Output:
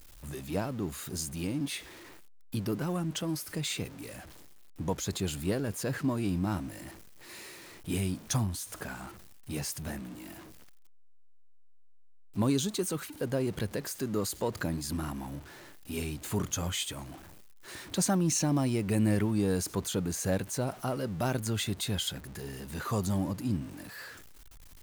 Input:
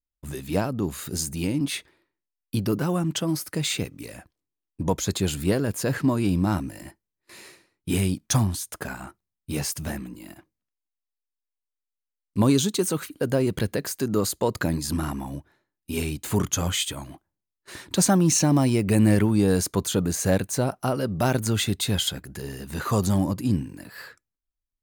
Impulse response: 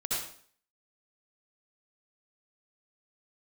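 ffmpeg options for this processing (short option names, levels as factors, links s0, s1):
-af "aeval=exprs='val(0)+0.5*0.0168*sgn(val(0))':c=same,volume=0.376"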